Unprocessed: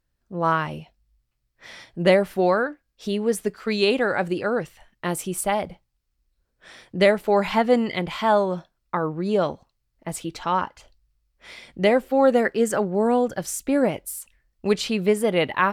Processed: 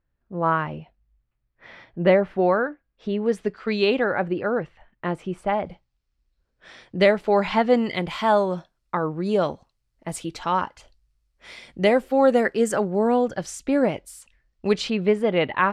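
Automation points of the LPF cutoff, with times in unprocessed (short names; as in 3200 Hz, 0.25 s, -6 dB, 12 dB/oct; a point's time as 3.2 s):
2200 Hz
from 3.26 s 3700 Hz
from 4.04 s 2100 Hz
from 5.66 s 5600 Hz
from 7.84 s 11000 Hz
from 12.99 s 6100 Hz
from 14.9 s 3300 Hz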